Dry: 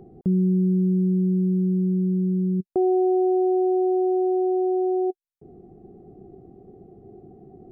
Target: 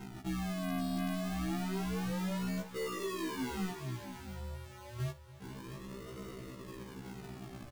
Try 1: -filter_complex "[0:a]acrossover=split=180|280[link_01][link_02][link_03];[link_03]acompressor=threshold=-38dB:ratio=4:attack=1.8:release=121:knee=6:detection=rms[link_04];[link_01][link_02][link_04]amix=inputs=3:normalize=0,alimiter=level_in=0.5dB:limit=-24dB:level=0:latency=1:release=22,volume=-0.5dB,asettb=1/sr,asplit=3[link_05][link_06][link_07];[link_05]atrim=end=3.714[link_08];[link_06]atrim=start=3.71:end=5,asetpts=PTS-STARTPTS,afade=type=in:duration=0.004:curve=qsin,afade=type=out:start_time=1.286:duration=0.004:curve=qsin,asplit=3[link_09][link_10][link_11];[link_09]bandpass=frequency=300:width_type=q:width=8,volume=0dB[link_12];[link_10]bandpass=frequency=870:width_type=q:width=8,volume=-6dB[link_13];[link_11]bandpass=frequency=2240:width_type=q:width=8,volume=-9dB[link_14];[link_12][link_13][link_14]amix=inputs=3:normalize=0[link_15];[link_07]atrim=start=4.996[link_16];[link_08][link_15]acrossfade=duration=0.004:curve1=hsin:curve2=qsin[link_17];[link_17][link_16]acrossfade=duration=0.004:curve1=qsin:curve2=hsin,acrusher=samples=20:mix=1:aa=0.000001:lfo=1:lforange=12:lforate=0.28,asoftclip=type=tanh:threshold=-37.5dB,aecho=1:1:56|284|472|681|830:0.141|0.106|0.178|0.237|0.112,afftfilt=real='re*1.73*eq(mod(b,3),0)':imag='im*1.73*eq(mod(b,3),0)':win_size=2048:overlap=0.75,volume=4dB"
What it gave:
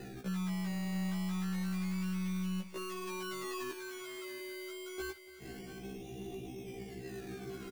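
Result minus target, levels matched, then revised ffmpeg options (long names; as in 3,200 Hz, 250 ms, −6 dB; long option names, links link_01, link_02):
sample-and-hold swept by an LFO: distortion −18 dB; downward compressor: peak gain reduction −9 dB
-filter_complex "[0:a]acrossover=split=180|280[link_01][link_02][link_03];[link_03]acompressor=threshold=-50dB:ratio=4:attack=1.8:release=121:knee=6:detection=rms[link_04];[link_01][link_02][link_04]amix=inputs=3:normalize=0,alimiter=level_in=0.5dB:limit=-24dB:level=0:latency=1:release=22,volume=-0.5dB,asettb=1/sr,asplit=3[link_05][link_06][link_07];[link_05]atrim=end=3.714[link_08];[link_06]atrim=start=3.71:end=5,asetpts=PTS-STARTPTS,afade=type=in:duration=0.004:curve=qsin,afade=type=out:start_time=1.286:duration=0.004:curve=qsin,asplit=3[link_09][link_10][link_11];[link_09]bandpass=frequency=300:width_type=q:width=8,volume=0dB[link_12];[link_10]bandpass=frequency=870:width_type=q:width=8,volume=-6dB[link_13];[link_11]bandpass=frequency=2240:width_type=q:width=8,volume=-9dB[link_14];[link_12][link_13][link_14]amix=inputs=3:normalize=0[link_15];[link_07]atrim=start=4.996[link_16];[link_08][link_15]acrossfade=duration=0.004:curve1=hsin:curve2=qsin[link_17];[link_17][link_16]acrossfade=duration=0.004:curve1=qsin:curve2=hsin,acrusher=samples=76:mix=1:aa=0.000001:lfo=1:lforange=45.6:lforate=0.28,asoftclip=type=tanh:threshold=-37.5dB,aecho=1:1:56|284|472|681|830:0.141|0.106|0.178|0.237|0.112,afftfilt=real='re*1.73*eq(mod(b,3),0)':imag='im*1.73*eq(mod(b,3),0)':win_size=2048:overlap=0.75,volume=4dB"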